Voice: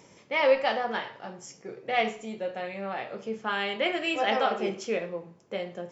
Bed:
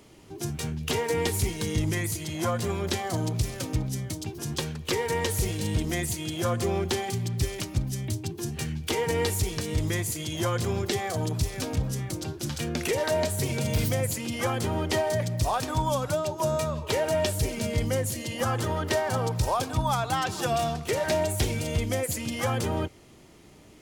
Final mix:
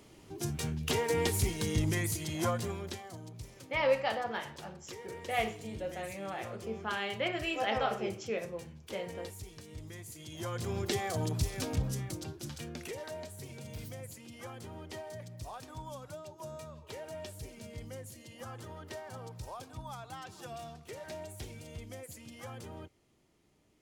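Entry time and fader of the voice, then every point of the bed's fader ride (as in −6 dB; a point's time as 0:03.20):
3.40 s, −6.0 dB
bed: 0:02.47 −3.5 dB
0:03.21 −19 dB
0:09.94 −19 dB
0:10.92 −4.5 dB
0:11.89 −4.5 dB
0:13.25 −18 dB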